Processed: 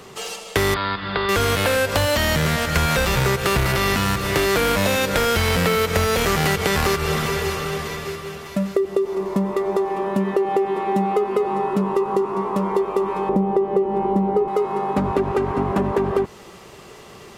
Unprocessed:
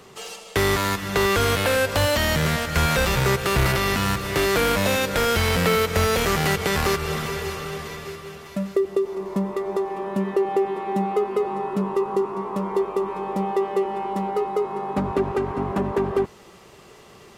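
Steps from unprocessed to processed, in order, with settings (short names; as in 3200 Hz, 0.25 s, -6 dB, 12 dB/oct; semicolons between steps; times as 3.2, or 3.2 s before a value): 13.29–14.48 tilt shelf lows +9.5 dB, about 800 Hz; compressor, threshold -21 dBFS, peak gain reduction 8.5 dB; 0.74–1.29 rippled Chebyshev low-pass 4900 Hz, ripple 6 dB; gain +5.5 dB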